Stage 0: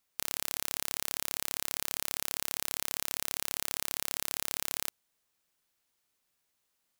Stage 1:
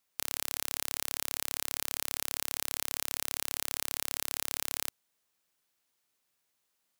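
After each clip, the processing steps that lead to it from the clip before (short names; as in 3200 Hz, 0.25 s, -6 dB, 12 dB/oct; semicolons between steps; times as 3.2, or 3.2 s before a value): low shelf 88 Hz -7 dB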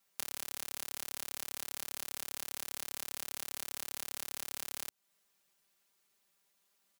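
comb 5.1 ms, depth 96%; compressor 3:1, threshold -36 dBFS, peak gain reduction 9.5 dB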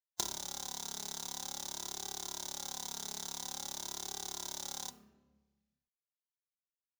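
per-bin expansion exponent 3; flange 0.48 Hz, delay 2.5 ms, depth 2.2 ms, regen +39%; reverb RT60 1.3 s, pre-delay 3 ms, DRR 9 dB; gain +12 dB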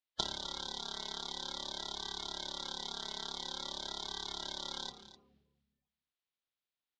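bin magnitudes rounded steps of 30 dB; ladder low-pass 4500 Hz, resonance 40%; echo 0.255 s -14.5 dB; gain +10.5 dB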